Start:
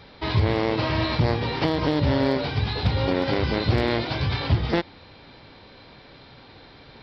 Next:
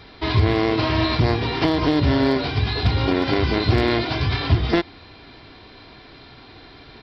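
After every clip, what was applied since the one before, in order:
parametric band 560 Hz −6 dB 0.23 octaves
notch filter 880 Hz, Q 14
comb filter 2.9 ms, depth 33%
level +3.5 dB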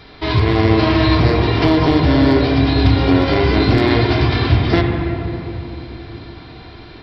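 convolution reverb RT60 3.4 s, pre-delay 7 ms, DRR 1.5 dB
level +2.5 dB

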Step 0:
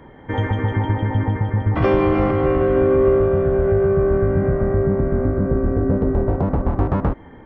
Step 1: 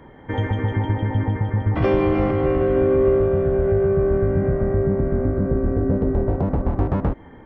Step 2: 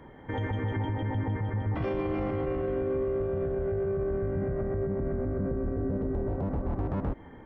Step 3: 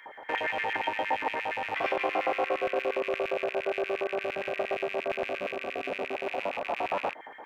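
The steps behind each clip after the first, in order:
dynamic equaliser 1,200 Hz, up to −4 dB, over −34 dBFS, Q 1.5; level −1.5 dB
brickwall limiter −18.5 dBFS, peak gain reduction 10.5 dB; level −4.5 dB
loose part that buzzes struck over −41 dBFS, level −35 dBFS; auto-filter high-pass square 8.6 Hz 690–2,000 Hz; level +6 dB

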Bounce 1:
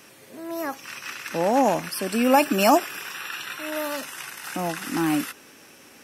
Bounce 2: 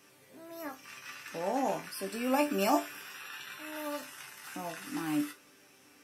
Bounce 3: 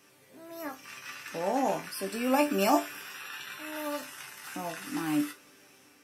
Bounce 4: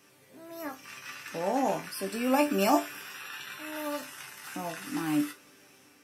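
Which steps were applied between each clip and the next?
resonators tuned to a chord G2 sus4, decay 0.21 s
automatic gain control gain up to 3 dB
parametric band 130 Hz +2 dB 1.9 octaves

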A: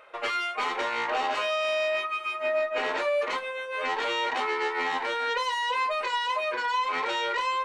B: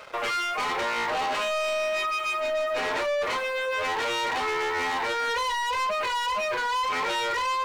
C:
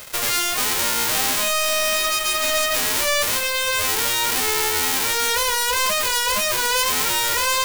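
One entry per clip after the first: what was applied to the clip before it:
leveller curve on the samples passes 3; brickwall limiter −23.5 dBFS, peak gain reduction 7 dB
spectral envelope flattened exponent 0.1; level +6.5 dB

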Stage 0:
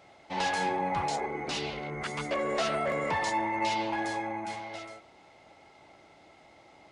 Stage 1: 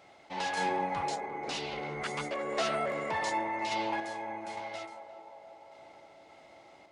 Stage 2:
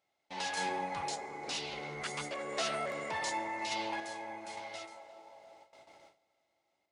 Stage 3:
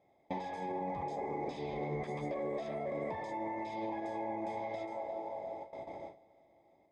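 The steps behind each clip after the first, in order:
low-shelf EQ 150 Hz −6.5 dB; sample-and-hold tremolo; feedback echo with a band-pass in the loop 350 ms, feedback 73%, band-pass 590 Hz, level −10 dB
noise gate with hold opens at −43 dBFS; high-shelf EQ 3,100 Hz +9.5 dB; dense smooth reverb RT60 2.5 s, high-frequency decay 0.95×, pre-delay 0 ms, DRR 18 dB; level −5.5 dB
brickwall limiter −33.5 dBFS, peak gain reduction 10.5 dB; downward compressor 10 to 1, threshold −48 dBFS, peak gain reduction 10.5 dB; moving average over 31 samples; level +18 dB

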